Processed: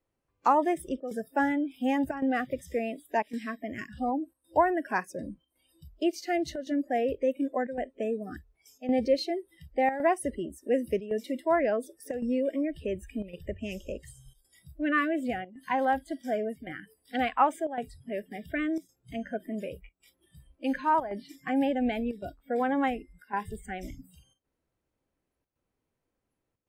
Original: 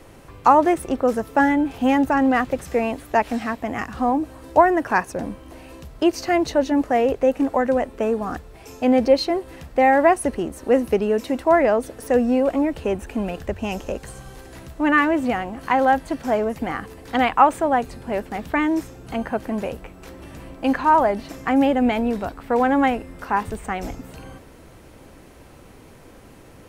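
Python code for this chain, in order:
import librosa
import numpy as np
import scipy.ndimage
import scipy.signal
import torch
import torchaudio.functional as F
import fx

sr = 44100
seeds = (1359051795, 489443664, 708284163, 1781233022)

y = fx.noise_reduce_blind(x, sr, reduce_db=28)
y = fx.chopper(y, sr, hz=0.9, depth_pct=65, duty_pct=90)
y = F.gain(torch.from_numpy(y), -9.0).numpy()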